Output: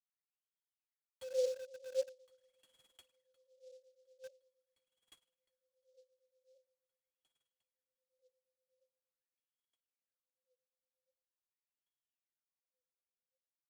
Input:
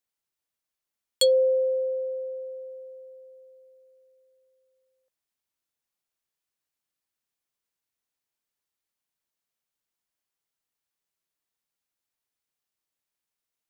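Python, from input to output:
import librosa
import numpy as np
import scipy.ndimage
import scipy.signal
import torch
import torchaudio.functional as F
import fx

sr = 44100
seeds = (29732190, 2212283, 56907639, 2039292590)

p1 = fx.low_shelf(x, sr, hz=460.0, db=-8.5)
p2 = fx.filter_lfo_notch(p1, sr, shape='sine', hz=8.2, low_hz=390.0, high_hz=2000.0, q=0.8)
p3 = fx.dynamic_eq(p2, sr, hz=2400.0, q=2.1, threshold_db=-51.0, ratio=4.0, max_db=6)
p4 = p3 + fx.echo_heads(p3, sr, ms=355, heads='second and third', feedback_pct=60, wet_db=-18.0, dry=0)
p5 = fx.rev_spring(p4, sr, rt60_s=1.7, pass_ms=(31,), chirp_ms=35, drr_db=4.5)
p6 = fx.wah_lfo(p5, sr, hz=0.44, low_hz=380.0, high_hz=3300.0, q=18.0)
p7 = scipy.signal.sosfilt(scipy.signal.bessel(2, 8900.0, 'lowpass', norm='mag', fs=sr, output='sos'), p6)
p8 = fx.quant_dither(p7, sr, seeds[0], bits=8, dither='none')
p9 = p7 + (p8 * 10.0 ** (-8.0 / 20.0))
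p10 = fx.noise_mod_delay(p9, sr, seeds[1], noise_hz=4800.0, depth_ms=0.033)
y = p10 * 10.0 ** (-1.0 / 20.0)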